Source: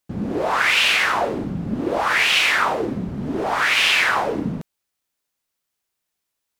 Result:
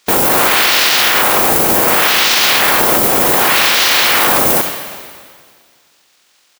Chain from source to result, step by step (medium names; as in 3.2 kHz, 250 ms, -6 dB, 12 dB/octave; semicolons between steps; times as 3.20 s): spectral peaks clipped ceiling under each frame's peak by 28 dB; distance through air 51 m; pitch shift -9.5 st; modulation noise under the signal 18 dB; RIAA curve recording; two-slope reverb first 0.26 s, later 1.9 s, from -18 dB, DRR 10.5 dB; loudness maximiser +27 dB; trim -1 dB